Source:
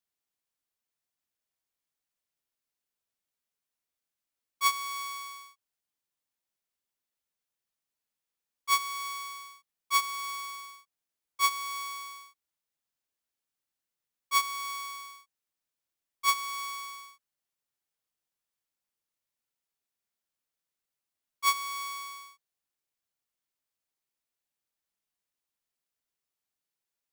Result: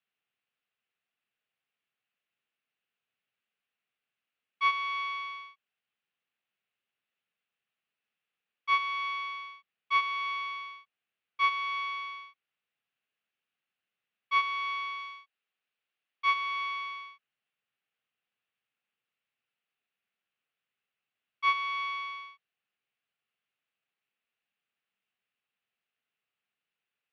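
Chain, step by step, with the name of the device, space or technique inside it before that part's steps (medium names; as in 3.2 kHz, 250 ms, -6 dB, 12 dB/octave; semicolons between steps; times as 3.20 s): 14.99–16.35 s: tone controls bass -7 dB, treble +3 dB; overdrive pedal into a guitar cabinet (overdrive pedal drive 15 dB, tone 1.9 kHz, clips at -11 dBFS; cabinet simulation 110–3700 Hz, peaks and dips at 120 Hz +9 dB, 200 Hz +5 dB, 320 Hz -5 dB, 590 Hz -5 dB, 950 Hz -9 dB, 2.7 kHz +7 dB); trim -1 dB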